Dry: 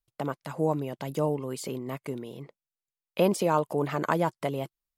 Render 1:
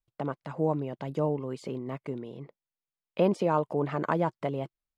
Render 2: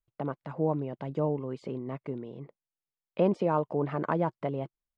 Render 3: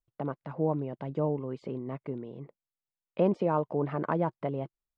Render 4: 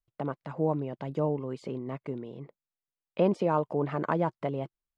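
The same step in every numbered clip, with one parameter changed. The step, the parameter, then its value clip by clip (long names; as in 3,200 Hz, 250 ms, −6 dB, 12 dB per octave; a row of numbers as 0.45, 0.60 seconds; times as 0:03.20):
head-to-tape spacing loss, at 10 kHz: 20, 37, 46, 29 decibels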